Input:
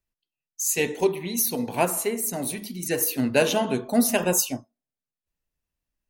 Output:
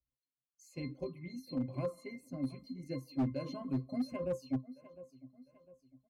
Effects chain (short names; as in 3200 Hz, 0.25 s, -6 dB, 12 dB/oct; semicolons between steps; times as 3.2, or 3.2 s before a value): bell 2100 Hz -4 dB 2.5 oct; feedback echo 0.703 s, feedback 39%, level -21 dB; dynamic EQ 750 Hz, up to -4 dB, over -38 dBFS, Q 1; limiter -16.5 dBFS, peak gain reduction 7 dB; reverb removal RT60 0.56 s; octave resonator C, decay 0.15 s; hard clip -31 dBFS, distortion -12 dB; gain +3.5 dB